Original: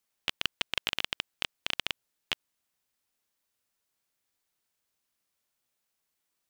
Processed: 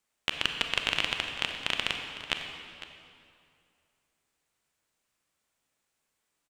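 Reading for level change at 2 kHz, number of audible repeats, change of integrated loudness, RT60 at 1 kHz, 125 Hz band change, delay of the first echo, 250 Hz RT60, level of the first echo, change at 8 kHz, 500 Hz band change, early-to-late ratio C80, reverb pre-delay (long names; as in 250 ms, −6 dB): +5.0 dB, 1, +3.5 dB, 2.3 s, +6.0 dB, 505 ms, 2.5 s, −14.5 dB, +2.5 dB, +5.5 dB, 5.5 dB, 26 ms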